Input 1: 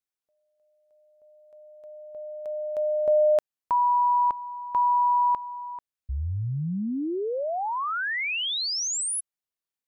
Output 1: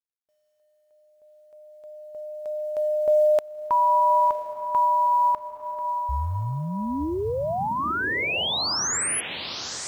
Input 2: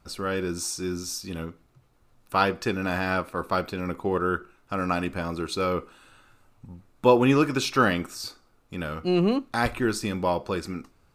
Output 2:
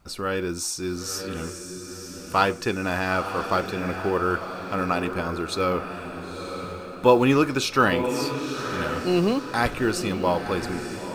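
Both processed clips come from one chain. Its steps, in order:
feedback delay with all-pass diffusion 964 ms, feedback 41%, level −8 dB
dynamic equaliser 180 Hz, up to −3 dB, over −41 dBFS, Q 1.2
log-companded quantiser 8 bits
level +2 dB

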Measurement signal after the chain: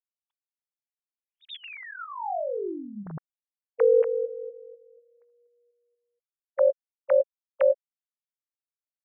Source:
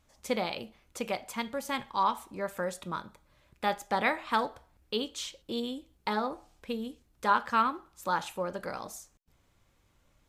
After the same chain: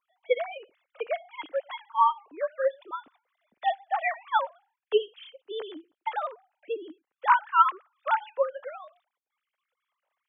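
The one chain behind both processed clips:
three sine waves on the formant tracks
expander for the loud parts 1.5 to 1, over −38 dBFS
level +6.5 dB

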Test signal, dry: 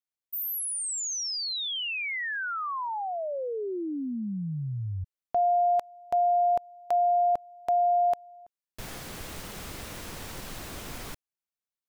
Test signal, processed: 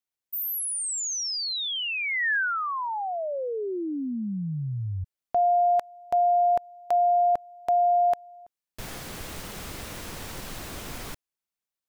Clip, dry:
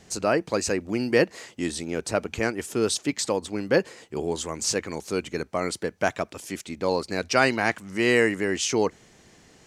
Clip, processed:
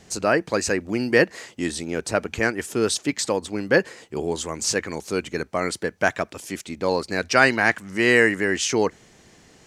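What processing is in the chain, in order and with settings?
dynamic equaliser 1,700 Hz, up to +6 dB, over −42 dBFS, Q 2.7
level +2 dB

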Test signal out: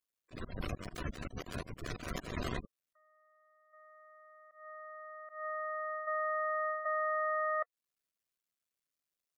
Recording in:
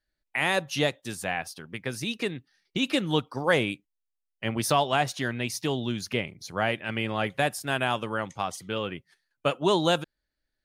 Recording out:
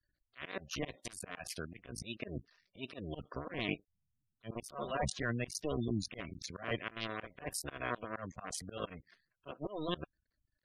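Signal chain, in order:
sub-harmonics by changed cycles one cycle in 2, muted
gate on every frequency bin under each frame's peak −15 dB strong
reversed playback
downward compressor 10 to 1, threshold −34 dBFS
reversed playback
volume swells 169 ms
Butterworth band-reject 850 Hz, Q 4.8
level +3.5 dB

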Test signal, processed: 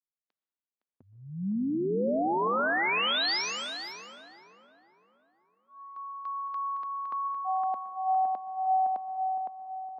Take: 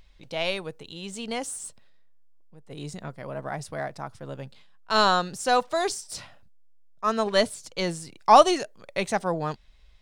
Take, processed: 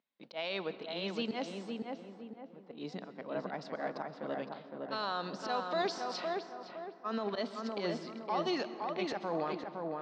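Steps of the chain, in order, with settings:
noise gate with hold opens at −44 dBFS
elliptic band-pass filter 210–4,600 Hz, stop band 40 dB
volume swells 144 ms
downward compressor, threshold −24 dBFS
brickwall limiter −26 dBFS
on a send: feedback echo with a low-pass in the loop 512 ms, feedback 43%, low-pass 2,000 Hz, level −3 dB
on the sum: dense smooth reverb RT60 1.7 s, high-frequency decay 0.5×, pre-delay 110 ms, DRR 12.5 dB
one half of a high-frequency compander decoder only

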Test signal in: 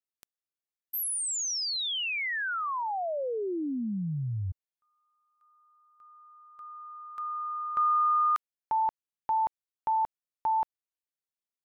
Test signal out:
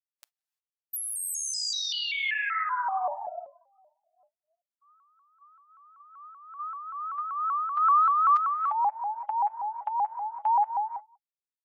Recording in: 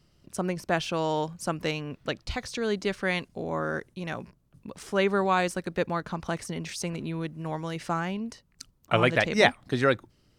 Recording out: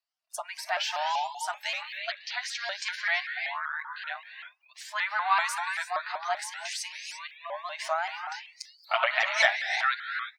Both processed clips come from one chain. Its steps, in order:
flanger 0.24 Hz, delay 6.7 ms, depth 3.9 ms, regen +7%
transient designer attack +3 dB, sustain +7 dB
dynamic equaliser 2,000 Hz, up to +4 dB, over −48 dBFS, Q 5
linear-phase brick-wall high-pass 620 Hz
reverb whose tail is shaped and stops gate 370 ms rising, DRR 8 dB
in parallel at 0 dB: downward compressor 6 to 1, threshold −40 dBFS
on the sum: parametric band 4,600 Hz +2.5 dB 0.36 octaves
hard clipping −9 dBFS
on a send: single-tap delay 178 ms −23 dB
on the sum: noise reduction from a noise print of the clip's start 26 dB
harmonic and percussive parts rebalanced percussive −5 dB
pitch modulation by a square or saw wave saw up 5.2 Hz, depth 160 cents
level +2.5 dB

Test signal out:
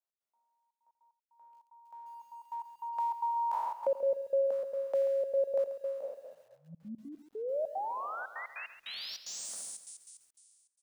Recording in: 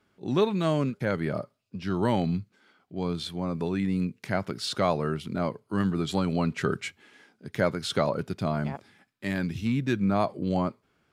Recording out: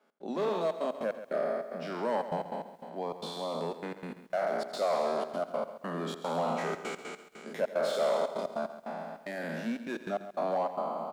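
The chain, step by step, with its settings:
peak hold with a decay on every bin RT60 1.82 s
bass and treble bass −15 dB, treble +6 dB
in parallel at +1 dB: downward compressor 5 to 1, threshold −36 dBFS
on the sum: hard clipping −20.5 dBFS
Chebyshev high-pass with heavy ripple 160 Hz, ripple 9 dB
gate pattern "x.xxxxx.x.x..xx" 149 BPM −60 dB
high-shelf EQ 2,300 Hz −10 dB
on a send: single-tap delay 85 ms −16.5 dB
on the sum: feedback echo at a low word length 136 ms, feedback 35%, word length 10 bits, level −12.5 dB

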